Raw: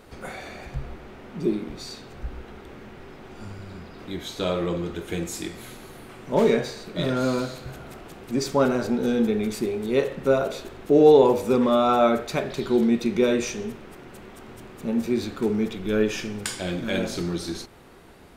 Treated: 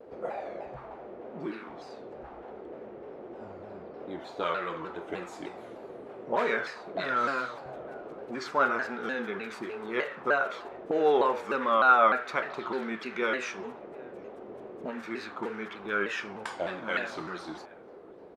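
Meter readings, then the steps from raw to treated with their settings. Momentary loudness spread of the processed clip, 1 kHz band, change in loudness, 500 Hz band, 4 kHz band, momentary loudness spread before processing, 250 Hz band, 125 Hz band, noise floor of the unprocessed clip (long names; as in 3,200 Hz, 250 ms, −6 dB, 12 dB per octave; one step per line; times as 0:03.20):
18 LU, +1.0 dB, −6.5 dB, −9.0 dB, −8.5 dB, 21 LU, −14.0 dB, −18.0 dB, −45 dBFS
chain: envelope filter 430–1,500 Hz, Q 2.3, up, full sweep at −22 dBFS
slap from a distant wall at 130 metres, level −24 dB
pitch modulation by a square or saw wave saw down 3.3 Hz, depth 160 cents
level +6.5 dB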